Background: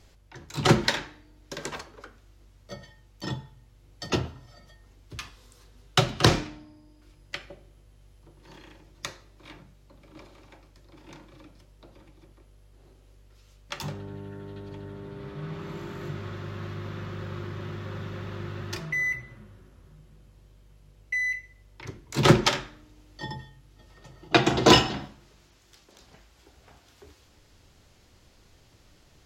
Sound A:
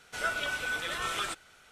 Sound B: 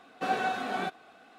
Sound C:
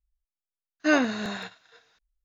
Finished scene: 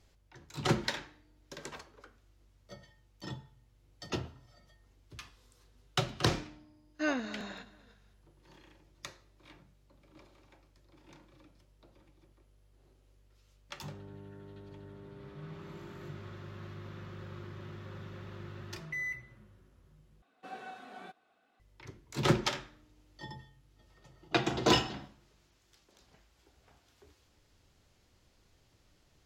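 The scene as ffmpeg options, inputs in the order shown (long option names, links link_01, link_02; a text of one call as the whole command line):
ffmpeg -i bed.wav -i cue0.wav -i cue1.wav -i cue2.wav -filter_complex "[0:a]volume=-9.5dB[link_01];[3:a]asplit=2[link_02][link_03];[link_03]adelay=231,lowpass=frequency=3400:poles=1,volume=-18dB,asplit=2[link_04][link_05];[link_05]adelay=231,lowpass=frequency=3400:poles=1,volume=0.39,asplit=2[link_06][link_07];[link_07]adelay=231,lowpass=frequency=3400:poles=1,volume=0.39[link_08];[link_02][link_04][link_06][link_08]amix=inputs=4:normalize=0[link_09];[link_01]asplit=2[link_10][link_11];[link_10]atrim=end=20.224[link_12];[2:a]atrim=end=1.38,asetpts=PTS-STARTPTS,volume=-16.5dB[link_13];[link_11]atrim=start=21.596[link_14];[link_09]atrim=end=2.24,asetpts=PTS-STARTPTS,volume=-10.5dB,afade=type=in:duration=0.004:curve=hsin,afade=type=out:start_time=2.236:duration=0.004:curve=hsin,adelay=6150[link_15];[link_12][link_13]acrossfade=duration=0.004:curve1=hsin:curve2=hsin[link_16];[link_16][link_14]acrossfade=duration=0.004:curve1=hsin:curve2=hsin[link_17];[link_17][link_15]amix=inputs=2:normalize=0" out.wav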